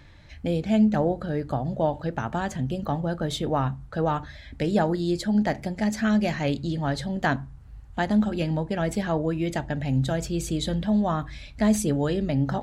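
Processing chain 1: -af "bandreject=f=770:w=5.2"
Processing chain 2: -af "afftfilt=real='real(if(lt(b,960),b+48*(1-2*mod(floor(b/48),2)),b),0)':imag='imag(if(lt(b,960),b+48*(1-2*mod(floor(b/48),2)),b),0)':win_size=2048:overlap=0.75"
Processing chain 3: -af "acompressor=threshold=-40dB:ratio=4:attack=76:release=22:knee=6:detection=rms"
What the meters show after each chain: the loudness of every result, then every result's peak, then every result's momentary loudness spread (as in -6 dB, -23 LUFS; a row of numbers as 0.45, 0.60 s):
-26.5, -24.5, -36.0 LUFS; -10.5, -10.5, -20.5 dBFS; 7, 6, 4 LU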